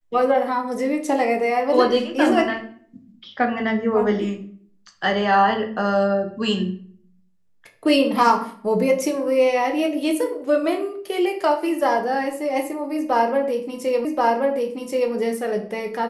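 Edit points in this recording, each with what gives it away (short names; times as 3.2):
14.05 repeat of the last 1.08 s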